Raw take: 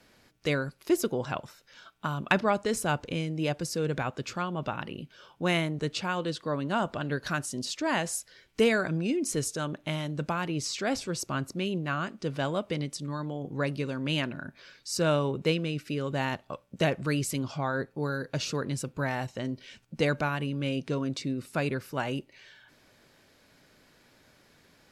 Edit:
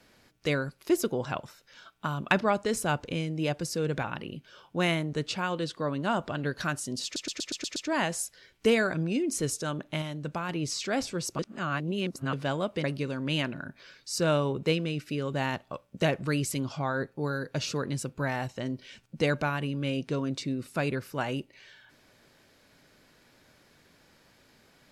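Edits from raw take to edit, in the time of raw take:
4.04–4.7 cut
7.7 stutter 0.12 s, 7 plays
9.96–10.43 gain -3 dB
11.33–12.27 reverse
12.78–13.63 cut

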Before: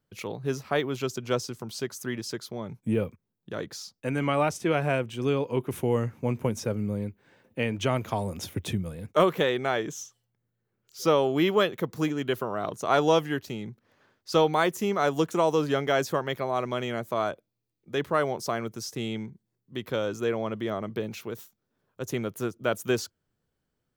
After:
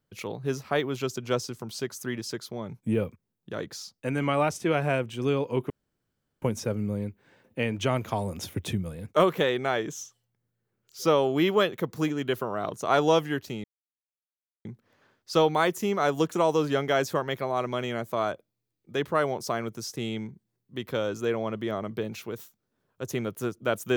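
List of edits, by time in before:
5.7–6.42 room tone
13.64 insert silence 1.01 s

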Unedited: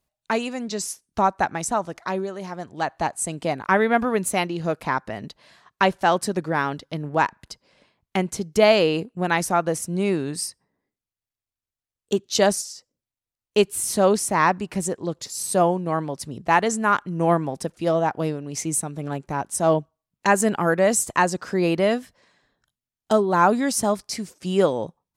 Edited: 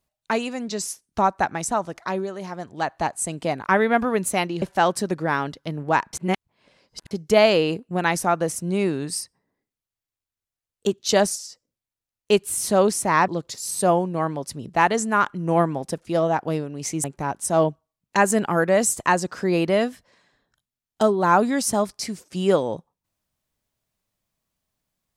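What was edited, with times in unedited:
4.62–5.88 cut
7.39–8.37 reverse
14.54–15 cut
18.76–19.14 cut

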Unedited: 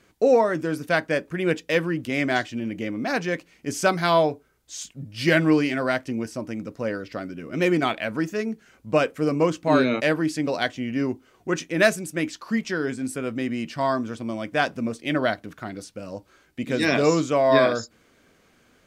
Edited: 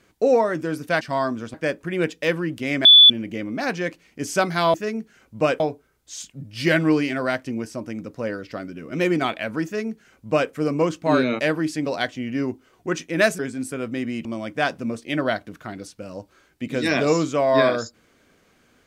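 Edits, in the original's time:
2.32–2.57 bleep 3460 Hz -6 dBFS
8.26–9.12 copy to 4.21
12–12.83 cut
13.69–14.22 move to 1.01

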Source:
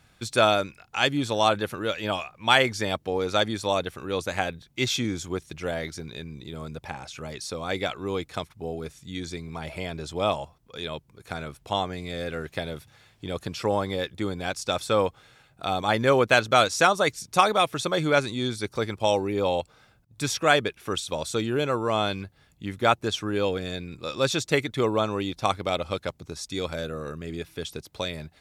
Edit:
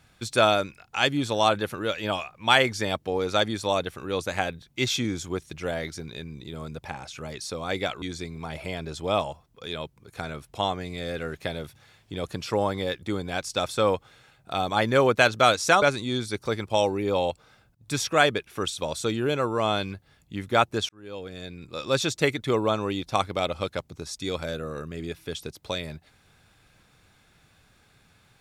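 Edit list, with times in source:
8.02–9.14 cut
16.94–18.12 cut
23.19–24.25 fade in

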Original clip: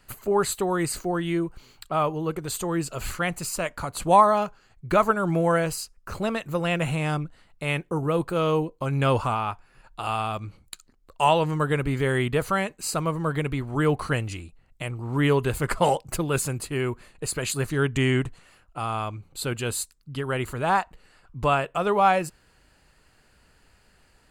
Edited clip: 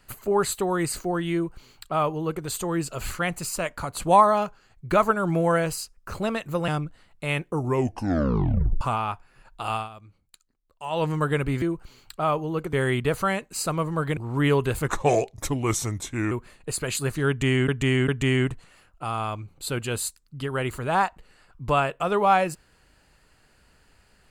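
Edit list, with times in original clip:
1.34–2.45 copy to 12.01
6.68–7.07 cut
7.91 tape stop 1.29 s
10.14–11.43 dip -14 dB, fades 0.14 s
13.45–14.96 cut
15.67–16.86 speed 83%
17.83–18.23 loop, 3 plays

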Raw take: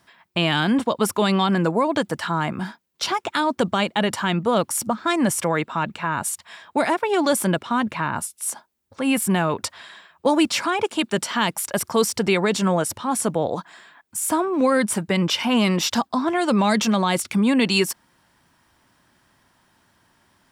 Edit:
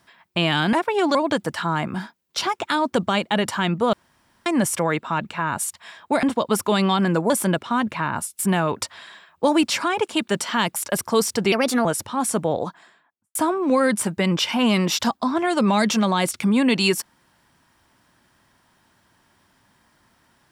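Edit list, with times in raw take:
0.73–1.8 swap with 6.88–7.3
4.58–5.11 room tone
8.39–9.21 cut
12.34–12.76 speed 127%
13.44–14.26 studio fade out

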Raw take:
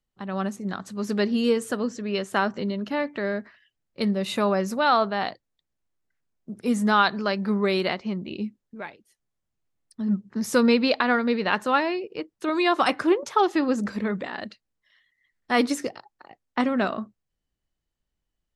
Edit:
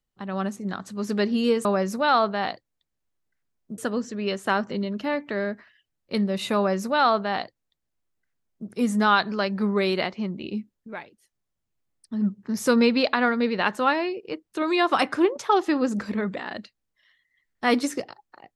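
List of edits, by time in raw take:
4.43–6.56 copy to 1.65

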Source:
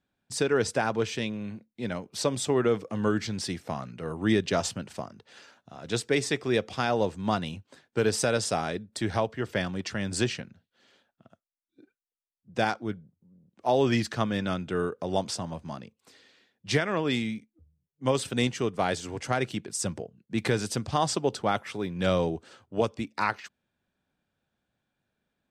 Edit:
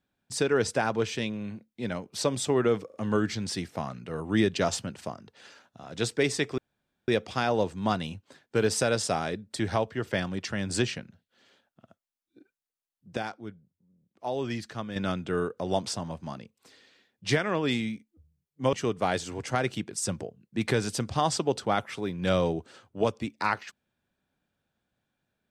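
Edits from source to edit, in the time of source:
2.86 stutter 0.04 s, 3 plays
6.5 insert room tone 0.50 s
12.59–14.38 gain -8 dB
18.15–18.5 cut

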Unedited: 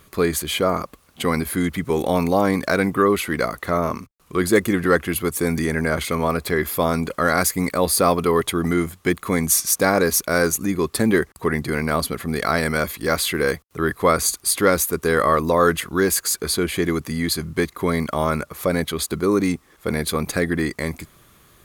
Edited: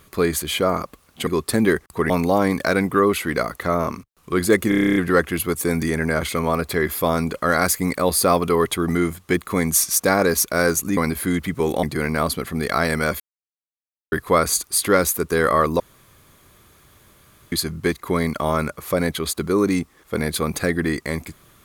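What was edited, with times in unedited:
1.27–2.13 swap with 10.73–11.56
4.72 stutter 0.03 s, 10 plays
12.93–13.85 mute
15.53–17.25 room tone

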